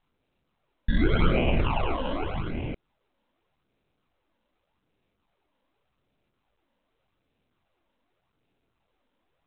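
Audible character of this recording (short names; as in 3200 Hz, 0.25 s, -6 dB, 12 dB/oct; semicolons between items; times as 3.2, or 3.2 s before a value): aliases and images of a low sample rate 1800 Hz, jitter 0%; phasing stages 12, 0.85 Hz, lowest notch 120–1300 Hz; µ-law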